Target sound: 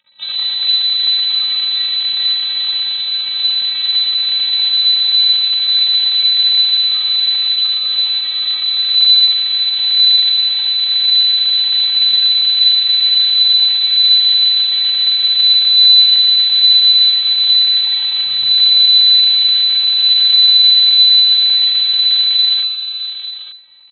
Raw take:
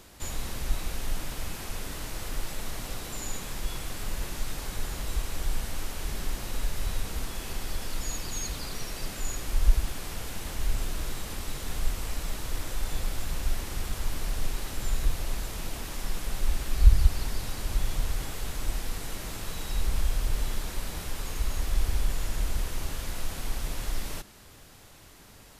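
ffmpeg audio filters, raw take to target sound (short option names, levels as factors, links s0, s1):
-filter_complex "[0:a]highpass=43,aemphasis=mode=reproduction:type=50fm,afftdn=nr=21:nf=-39,adynamicequalizer=threshold=0.00251:dfrequency=110:dqfactor=2.7:tfrequency=110:tqfactor=2.7:attack=5:release=100:ratio=0.375:range=1.5:mode=boostabove:tftype=bell,asoftclip=type=tanh:threshold=0.158,asetrate=47187,aresample=44100,apsyclip=23.7,acrusher=bits=4:dc=4:mix=0:aa=0.000001,afftfilt=real='hypot(re,im)*cos(PI*b)':imag='0':win_size=512:overlap=0.75,asplit=2[s0][s1];[s1]aecho=0:1:43|120|432|646|887:0.224|0.355|0.188|0.15|0.299[s2];[s0][s2]amix=inputs=2:normalize=0,lowpass=f=3400:t=q:w=0.5098,lowpass=f=3400:t=q:w=0.6013,lowpass=f=3400:t=q:w=0.9,lowpass=f=3400:t=q:w=2.563,afreqshift=-4000,volume=0.422"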